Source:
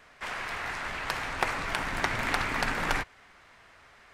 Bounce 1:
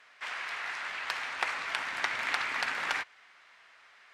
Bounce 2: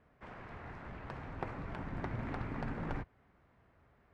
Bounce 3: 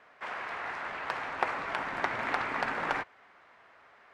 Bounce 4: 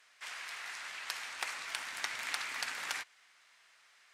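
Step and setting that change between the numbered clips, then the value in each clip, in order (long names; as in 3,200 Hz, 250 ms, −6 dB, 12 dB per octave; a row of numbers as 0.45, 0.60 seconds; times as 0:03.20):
resonant band-pass, frequency: 2,800, 110, 780, 7,800 Hertz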